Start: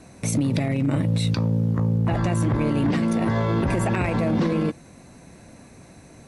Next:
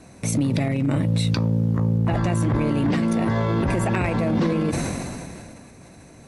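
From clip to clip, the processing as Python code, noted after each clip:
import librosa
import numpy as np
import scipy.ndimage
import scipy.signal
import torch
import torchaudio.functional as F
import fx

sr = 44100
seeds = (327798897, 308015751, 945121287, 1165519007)

y = fx.sustainer(x, sr, db_per_s=24.0)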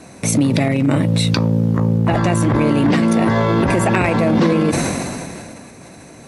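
y = fx.low_shelf(x, sr, hz=97.0, db=-12.0)
y = y * 10.0 ** (8.5 / 20.0)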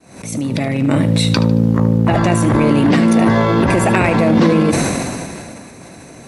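y = fx.fade_in_head(x, sr, length_s=1.05)
y = fx.echo_feedback(y, sr, ms=75, feedback_pct=38, wet_db=-13.5)
y = fx.pre_swell(y, sr, db_per_s=93.0)
y = y * 10.0 ** (2.0 / 20.0)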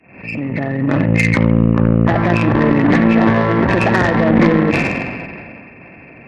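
y = fx.freq_compress(x, sr, knee_hz=1700.0, ratio=4.0)
y = fx.cheby_harmonics(y, sr, harmonics=(2, 3, 8), levels_db=(-15, -14, -30), full_scale_db=-1.5)
y = fx.fold_sine(y, sr, drive_db=4, ceiling_db=1.5)
y = y * 10.0 ** (-3.0 / 20.0)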